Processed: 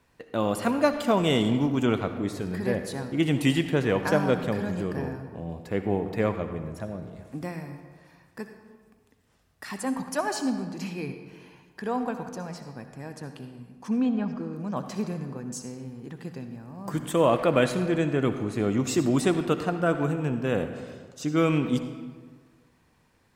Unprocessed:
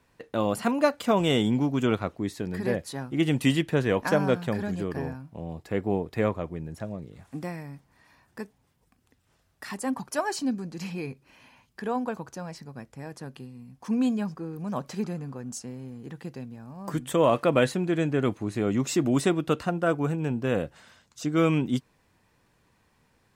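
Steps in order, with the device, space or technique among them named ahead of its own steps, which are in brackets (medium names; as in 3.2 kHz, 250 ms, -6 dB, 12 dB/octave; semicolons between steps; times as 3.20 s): 13.50–14.77 s: low-pass that closes with the level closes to 2.7 kHz, closed at -23 dBFS; saturated reverb return (on a send at -7 dB: reverberation RT60 1.5 s, pre-delay 57 ms + saturation -20 dBFS, distortion -15 dB)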